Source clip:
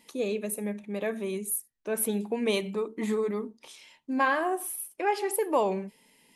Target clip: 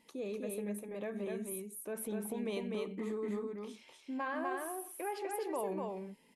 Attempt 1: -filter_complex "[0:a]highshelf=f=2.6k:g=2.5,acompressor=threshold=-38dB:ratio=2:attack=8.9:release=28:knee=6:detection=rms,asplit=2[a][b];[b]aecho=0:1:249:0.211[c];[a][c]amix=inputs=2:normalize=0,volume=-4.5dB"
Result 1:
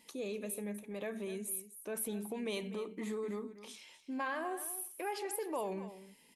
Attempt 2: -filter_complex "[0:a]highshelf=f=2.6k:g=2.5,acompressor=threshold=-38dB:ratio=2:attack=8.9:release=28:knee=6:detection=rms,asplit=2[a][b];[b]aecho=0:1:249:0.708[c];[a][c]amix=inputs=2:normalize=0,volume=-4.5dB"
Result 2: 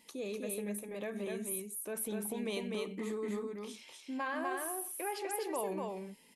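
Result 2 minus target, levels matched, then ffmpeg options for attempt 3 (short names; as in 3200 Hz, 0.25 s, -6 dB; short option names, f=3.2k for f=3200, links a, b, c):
4000 Hz band +4.5 dB
-filter_complex "[0:a]highshelf=f=2.6k:g=-7.5,acompressor=threshold=-38dB:ratio=2:attack=8.9:release=28:knee=6:detection=rms,asplit=2[a][b];[b]aecho=0:1:249:0.708[c];[a][c]amix=inputs=2:normalize=0,volume=-4.5dB"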